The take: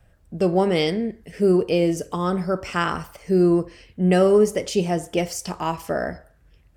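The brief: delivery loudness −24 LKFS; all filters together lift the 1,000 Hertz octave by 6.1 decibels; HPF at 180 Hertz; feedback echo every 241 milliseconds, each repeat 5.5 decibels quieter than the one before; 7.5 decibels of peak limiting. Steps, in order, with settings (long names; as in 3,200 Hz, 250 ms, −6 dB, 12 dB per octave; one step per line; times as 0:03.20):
high-pass filter 180 Hz
parametric band 1,000 Hz +8 dB
brickwall limiter −11 dBFS
repeating echo 241 ms, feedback 53%, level −5.5 dB
level −2.5 dB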